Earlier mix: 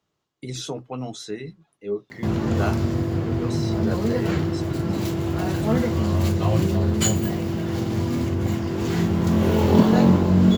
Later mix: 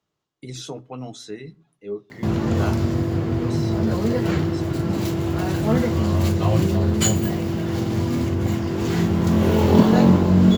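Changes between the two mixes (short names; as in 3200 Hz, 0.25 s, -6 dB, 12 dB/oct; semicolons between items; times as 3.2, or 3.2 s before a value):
speech -6.5 dB; reverb: on, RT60 0.50 s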